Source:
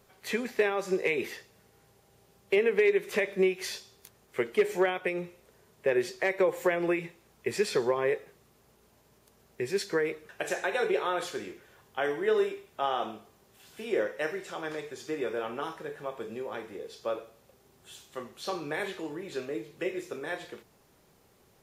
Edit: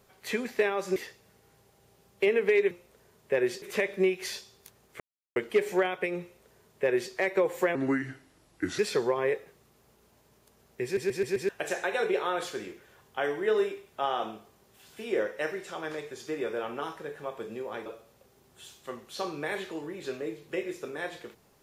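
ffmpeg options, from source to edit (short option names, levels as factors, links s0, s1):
-filter_complex "[0:a]asplit=13[s0][s1][s2][s3][s4][s5][s6][s7][s8][s9][s10][s11][s12];[s0]atrim=end=0.962[s13];[s1]atrim=start=1.258:end=3.012[s14];[s2]atrim=start=5.248:end=6.162[s15];[s3]atrim=start=3.008:end=4.39,asetpts=PTS-STARTPTS,afade=t=out:st=1.378:d=0.004:c=hsin,apad=pad_dur=0.36[s16];[s4]atrim=start=4.39:end=6.784,asetpts=PTS-STARTPTS,afade=t=in:d=0.004:c=hsin[s17];[s5]atrim=start=6.78:end=7.59,asetpts=PTS-STARTPTS,asetrate=34398,aresample=44100,atrim=end_sample=45796,asetpts=PTS-STARTPTS[s18];[s6]atrim=start=7.586:end=9.772[s19];[s7]atrim=start=9.638:end=9.772[s20];[s8]atrim=start=9.638:end=9.772[s21];[s9]atrim=start=9.638:end=9.772[s22];[s10]atrim=start=9.638:end=9.772[s23];[s11]atrim=start=10.288:end=16.662[s24];[s12]atrim=start=17.138[s25];[s13][s14]acrossfade=d=0.004:c1=hsin:c2=hsin[s26];[s26][s15]acrossfade=d=0.004:c1=hsin:c2=hsin[s27];[s16][s17]concat=n=2:v=0:a=1[s28];[s27][s28]acrossfade=d=0.004:c1=hsin:c2=hsin[s29];[s29][s18]acrossfade=d=0.004:c1=hsin:c2=hsin[s30];[s30][s19]acrossfade=d=0.004:c1=hsin:c2=hsin[s31];[s31][s20]acrossfade=d=0.004:c1=hsin:c2=hsin[s32];[s32][s21]acrossfade=d=0.004:c1=hsin:c2=hsin[s33];[s33][s22]acrossfade=d=0.004:c1=hsin:c2=hsin[s34];[s34][s23]acrossfade=d=0.004:c1=hsin:c2=hsin[s35];[s35][s24]acrossfade=d=0.004:c1=hsin:c2=hsin[s36];[s36][s25]acrossfade=d=0.004:c1=hsin:c2=hsin"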